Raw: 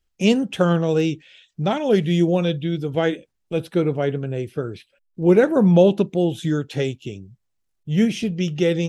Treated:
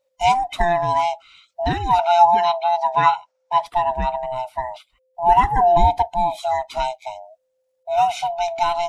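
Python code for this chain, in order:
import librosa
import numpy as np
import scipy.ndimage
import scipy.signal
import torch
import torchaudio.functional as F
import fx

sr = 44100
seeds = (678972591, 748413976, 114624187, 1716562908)

y = fx.band_swap(x, sr, width_hz=500)
y = fx.cabinet(y, sr, low_hz=200.0, low_slope=12, high_hz=7500.0, hz=(310.0, 440.0, 910.0, 1400.0, 2300.0, 5600.0), db=(-8, 3, 8, 10, 4, 7), at=(1.99, 3.66))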